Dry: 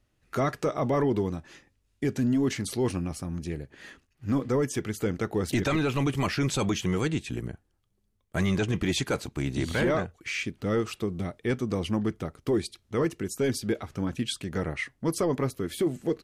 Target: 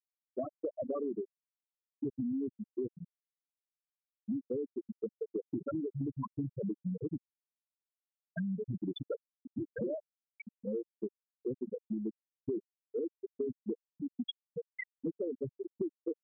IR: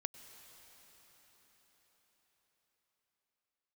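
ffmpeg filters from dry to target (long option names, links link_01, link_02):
-af "highpass=frequency=140:poles=1,afftfilt=real='re*gte(hypot(re,im),0.282)':imag='im*gte(hypot(re,im),0.282)':win_size=1024:overlap=0.75,acompressor=threshold=-35dB:ratio=6,volume=1.5dB"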